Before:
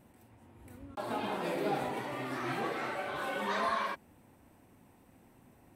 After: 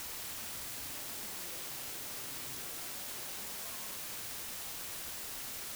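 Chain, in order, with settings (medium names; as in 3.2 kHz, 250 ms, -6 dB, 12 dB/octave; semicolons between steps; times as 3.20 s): tilt EQ -3.5 dB/octave; peak limiter -39.5 dBFS, peak gain reduction 21 dB; flange 0.59 Hz, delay 0.5 ms, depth 7.7 ms, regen +45%; word length cut 6-bit, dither triangular; trim -6.5 dB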